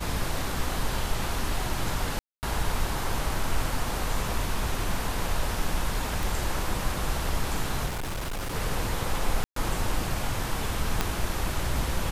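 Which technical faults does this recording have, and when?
2.19–2.43 s: dropout 239 ms
6.23 s: pop
7.86–8.55 s: clipped -28.5 dBFS
9.44–9.56 s: dropout 123 ms
11.01 s: pop -9 dBFS

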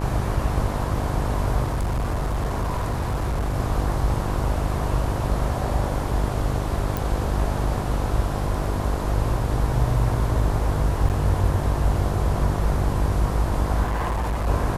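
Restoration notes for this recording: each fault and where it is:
buzz 50 Hz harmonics 21 -27 dBFS
1.64–3.56 s: clipped -20.5 dBFS
6.97 s: pop
11.09–11.10 s: dropout 8.5 ms
13.83–14.48 s: clipped -21 dBFS

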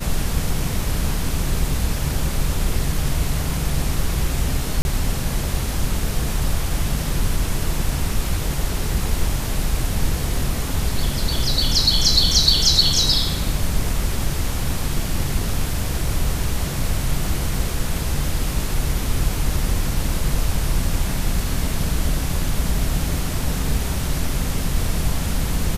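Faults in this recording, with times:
4.82–4.85 s: dropout 31 ms

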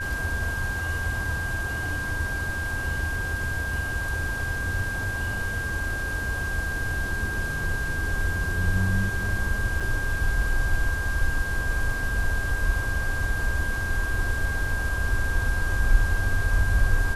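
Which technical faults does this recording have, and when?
whine 1.6 kHz -29 dBFS
9.80–9.81 s: dropout 5.4 ms

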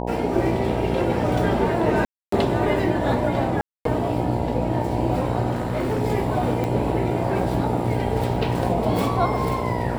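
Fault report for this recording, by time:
buzz 60 Hz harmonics 16 -27 dBFS
2.05–2.32 s: dropout 274 ms
3.61–3.85 s: dropout 243 ms
5.51–6.02 s: clipped -19.5 dBFS
6.64 s: pop -14 dBFS

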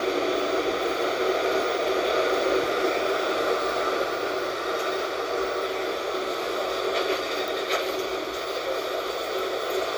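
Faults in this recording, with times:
7.48 s: pop

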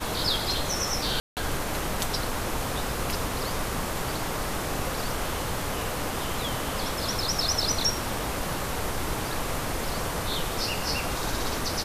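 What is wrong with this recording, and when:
1.20–1.37 s: dropout 168 ms

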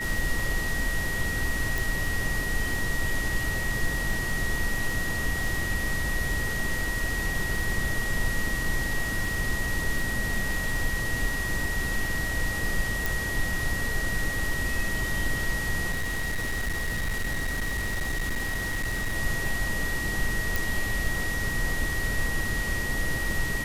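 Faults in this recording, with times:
crackle 25 per s -31 dBFS
whine 1.9 kHz -30 dBFS
1.78 s: pop
13.06 s: pop
15.91–19.17 s: clipped -24.5 dBFS
20.56 s: pop

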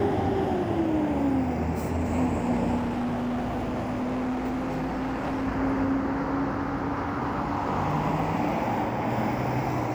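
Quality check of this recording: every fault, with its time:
2.76–5.48 s: clipped -25.5 dBFS

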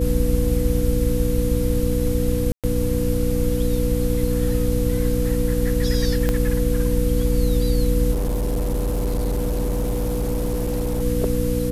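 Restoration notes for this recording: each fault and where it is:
hum 60 Hz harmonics 5 -24 dBFS
whine 490 Hz -25 dBFS
2.52–2.64 s: dropout 117 ms
6.29 s: pop -8 dBFS
8.11–11.03 s: clipped -19 dBFS

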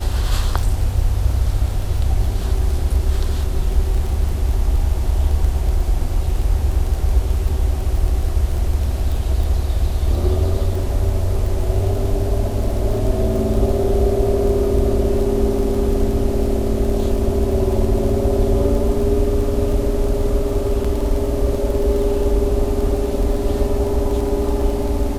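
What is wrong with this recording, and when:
crackle 14 per s -23 dBFS
20.84–20.85 s: dropout 5.3 ms

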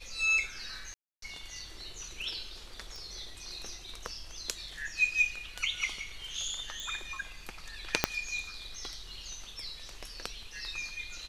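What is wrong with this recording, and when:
0.94–1.22 s: dropout 283 ms
2.96 s: pop
6.80 s: pop
8.04 s: pop -6 dBFS

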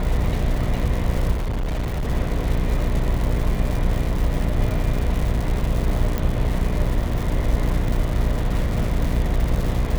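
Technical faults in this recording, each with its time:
buzz 60 Hz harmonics 12 -25 dBFS
crackle 300 per s -26 dBFS
1.33–2.08 s: clipped -20.5 dBFS
6.18 s: pop

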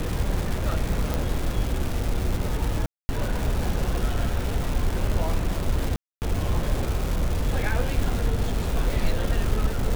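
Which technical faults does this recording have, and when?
crackle 600 per s -27 dBFS
1.14 s: pop
2.86–3.09 s: dropout 230 ms
5.96–6.22 s: dropout 259 ms

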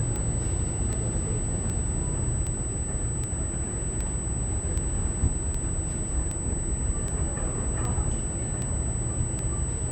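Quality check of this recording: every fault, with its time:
tick 78 rpm -19 dBFS
whine 8 kHz -33 dBFS

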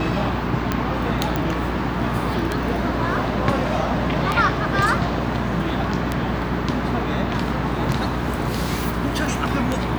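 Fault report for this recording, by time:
hum 60 Hz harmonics 7 -27 dBFS
tick 33 1/3 rpm -7 dBFS
1.36 s: pop -9 dBFS

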